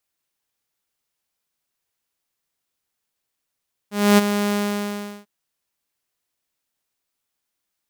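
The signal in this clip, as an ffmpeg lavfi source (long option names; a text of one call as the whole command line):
ffmpeg -f lavfi -i "aevalsrc='0.447*(2*mod(205*t,1)-1)':duration=1.344:sample_rate=44100,afade=type=in:duration=0.269,afade=type=out:start_time=0.269:duration=0.023:silence=0.335,afade=type=out:start_time=0.61:duration=0.734" out.wav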